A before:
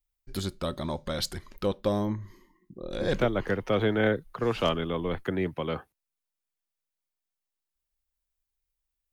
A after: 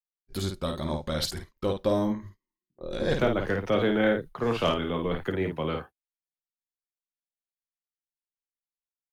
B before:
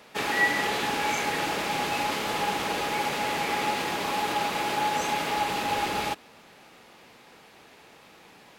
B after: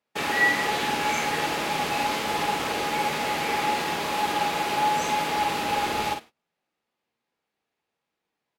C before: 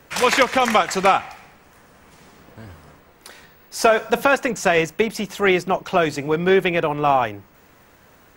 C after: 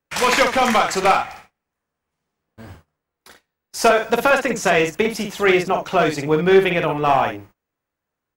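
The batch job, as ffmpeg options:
-af "agate=range=0.0251:threshold=0.01:ratio=16:detection=peak,aeval=exprs='clip(val(0),-1,0.282)':c=same,aecho=1:1:13|52:0.335|0.531"

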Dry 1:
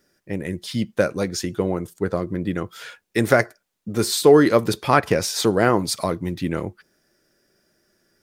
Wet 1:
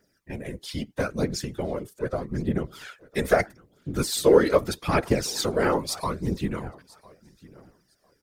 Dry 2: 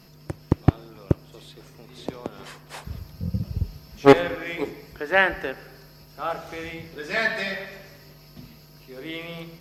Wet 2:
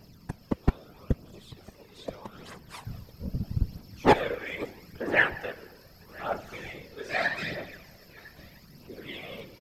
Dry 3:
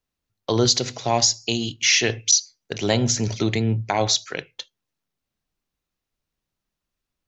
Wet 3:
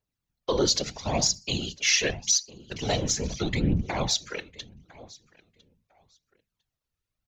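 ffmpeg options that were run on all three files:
-af "aecho=1:1:1003|2006:0.0708|0.0135,aphaser=in_gain=1:out_gain=1:delay=2.4:decay=0.51:speed=0.79:type=triangular,afftfilt=real='hypot(re,im)*cos(2*PI*random(0))':imag='hypot(re,im)*sin(2*PI*random(1))':win_size=512:overlap=0.75"

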